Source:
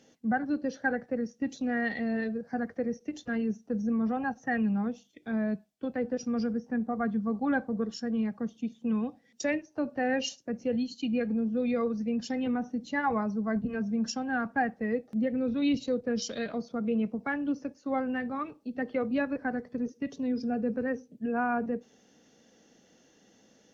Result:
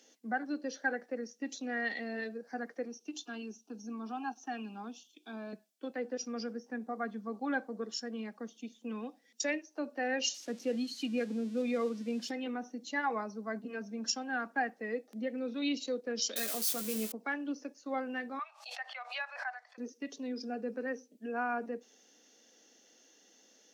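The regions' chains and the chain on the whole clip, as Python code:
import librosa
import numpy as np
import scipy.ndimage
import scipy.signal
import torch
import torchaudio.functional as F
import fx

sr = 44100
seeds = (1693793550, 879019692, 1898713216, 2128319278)

y = fx.chain(x, sr, fx.peak_eq(hz=2700.0, db=10.5, octaves=1.1),
    fx.fixed_phaser(hz=530.0, stages=6), at=(2.85, 5.53))
y = fx.chain(y, sr, fx.crossing_spikes(level_db=-36.5),
    fx.lowpass(hz=4400.0, slope=12),
    fx.low_shelf(hz=310.0, db=7.5), at=(10.34, 12.31))
y = fx.chain(y, sr, fx.crossing_spikes(level_db=-27.5),
    fx.doubler(ms=14.0, db=-6.0), at=(16.36, 17.12))
y = fx.chain(y, sr, fx.steep_highpass(hz=660.0, slope=72),
    fx.air_absorb(metres=71.0),
    fx.pre_swell(db_per_s=88.0), at=(18.39, 19.78))
y = scipy.signal.sosfilt(scipy.signal.butter(4, 260.0, 'highpass', fs=sr, output='sos'), y)
y = fx.high_shelf(y, sr, hz=2800.0, db=11.5)
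y = y * 10.0 ** (-5.5 / 20.0)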